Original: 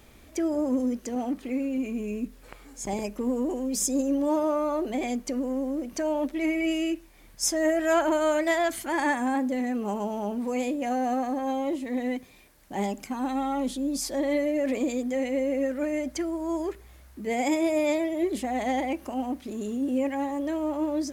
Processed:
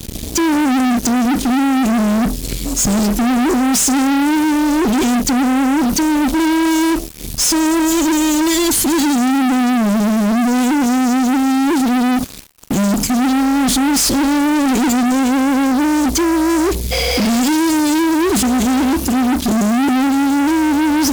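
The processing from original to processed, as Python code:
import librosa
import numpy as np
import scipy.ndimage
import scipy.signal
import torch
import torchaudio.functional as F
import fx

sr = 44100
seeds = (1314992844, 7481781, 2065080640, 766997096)

y = fx.spec_repair(x, sr, seeds[0], start_s=16.94, length_s=0.45, low_hz=440.0, high_hz=6400.0, source='after')
y = scipy.signal.sosfilt(scipy.signal.cheby1(2, 1.0, [240.0, 4500.0], 'bandstop', fs=sr, output='sos'), y)
y = fx.fuzz(y, sr, gain_db=49.0, gate_db=-55.0)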